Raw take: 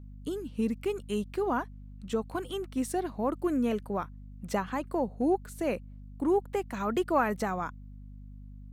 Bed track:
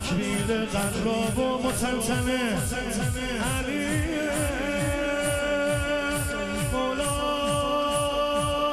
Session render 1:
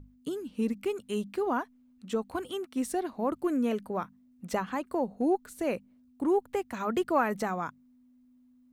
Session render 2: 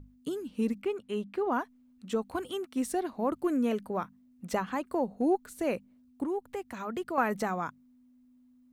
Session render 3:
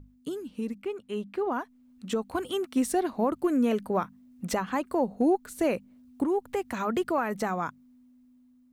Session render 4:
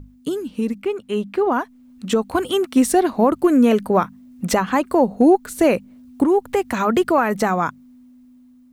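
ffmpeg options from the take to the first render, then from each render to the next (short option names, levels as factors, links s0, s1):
-af "bandreject=f=50:t=h:w=6,bandreject=f=100:t=h:w=6,bandreject=f=150:t=h:w=6,bandreject=f=200:t=h:w=6"
-filter_complex "[0:a]asplit=3[s0][s1][s2];[s0]afade=t=out:st=0.8:d=0.02[s3];[s1]bass=f=250:g=-4,treble=f=4000:g=-12,afade=t=in:st=0.8:d=0.02,afade=t=out:st=1.51:d=0.02[s4];[s2]afade=t=in:st=1.51:d=0.02[s5];[s3][s4][s5]amix=inputs=3:normalize=0,asettb=1/sr,asplit=3[s6][s7][s8];[s6]atrim=end=6.244[s9];[s7]atrim=start=6.24:end=7.18,asetpts=PTS-STARTPTS,afade=t=in:d=0.004:c=qsin,afade=t=out:st=0.936:d=0.004:c=qsin,acompressor=threshold=0.00794:ratio=1.5:attack=3.2:release=140:knee=1:detection=peak[s10];[s8]atrim=start=7.176[s11];[s9][s10]acrossfade=d=0.004:c1=hsin:c2=qsin[s12];[s12][s11]acrossfade=d=0.004:c1=qsin:c2=hsin"
-af "alimiter=level_in=1.06:limit=0.0631:level=0:latency=1:release=496,volume=0.944,dynaudnorm=f=540:g=7:m=2.51"
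-af "volume=3.35"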